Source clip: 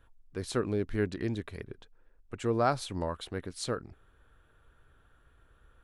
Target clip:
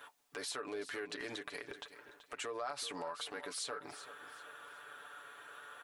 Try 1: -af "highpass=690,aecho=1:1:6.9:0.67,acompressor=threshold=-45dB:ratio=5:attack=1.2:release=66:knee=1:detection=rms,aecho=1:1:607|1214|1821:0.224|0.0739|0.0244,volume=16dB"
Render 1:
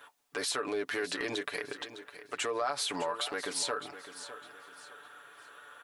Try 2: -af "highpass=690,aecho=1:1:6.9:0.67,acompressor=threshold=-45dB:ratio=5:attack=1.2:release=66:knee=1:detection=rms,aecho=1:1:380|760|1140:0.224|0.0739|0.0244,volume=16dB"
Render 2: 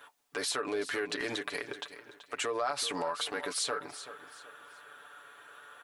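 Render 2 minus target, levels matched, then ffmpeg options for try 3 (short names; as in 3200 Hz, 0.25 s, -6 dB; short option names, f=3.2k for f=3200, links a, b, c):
compressor: peak gain reduction -8.5 dB
-af "highpass=690,aecho=1:1:6.9:0.67,acompressor=threshold=-55.5dB:ratio=5:attack=1.2:release=66:knee=1:detection=rms,aecho=1:1:380|760|1140:0.224|0.0739|0.0244,volume=16dB"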